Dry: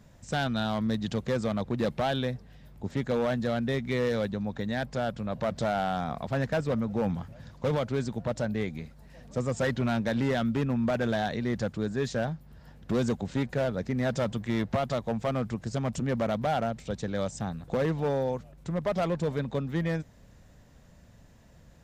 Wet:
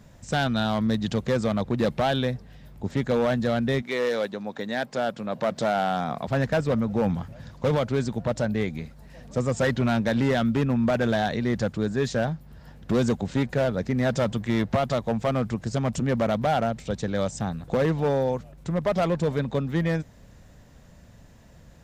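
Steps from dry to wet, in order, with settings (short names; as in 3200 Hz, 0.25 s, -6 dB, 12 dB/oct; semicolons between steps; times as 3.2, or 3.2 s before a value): 3.81–6.26 HPF 410 Hz -> 130 Hz 12 dB/oct; gain +4.5 dB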